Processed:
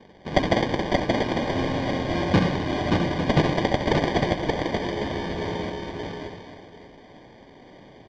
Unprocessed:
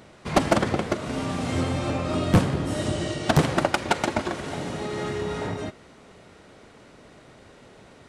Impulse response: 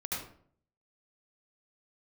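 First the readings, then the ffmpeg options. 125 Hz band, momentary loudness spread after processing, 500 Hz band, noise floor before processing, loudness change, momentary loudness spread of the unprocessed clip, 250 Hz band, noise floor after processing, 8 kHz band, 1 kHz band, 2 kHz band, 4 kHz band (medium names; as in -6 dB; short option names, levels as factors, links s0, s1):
0.0 dB, 11 LU, +2.0 dB, -51 dBFS, +1.0 dB, 9 LU, +1.5 dB, -50 dBFS, -8.0 dB, +1.0 dB, +1.5 dB, +2.0 dB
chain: -filter_complex "[0:a]highpass=f=160:p=1,aecho=1:1:575:0.178,asplit=2[s0][s1];[1:a]atrim=start_sample=2205,afade=t=out:st=0.14:d=0.01,atrim=end_sample=6615[s2];[s1][s2]afir=irnorm=-1:irlink=0,volume=0.376[s3];[s0][s3]amix=inputs=2:normalize=0,acrusher=samples=33:mix=1:aa=0.000001,lowpass=f=4800:w=0.5412,lowpass=f=4800:w=1.3066,asplit=2[s4][s5];[s5]aecho=0:1:66|578|849:0.335|0.708|0.316[s6];[s4][s6]amix=inputs=2:normalize=0,volume=0.841"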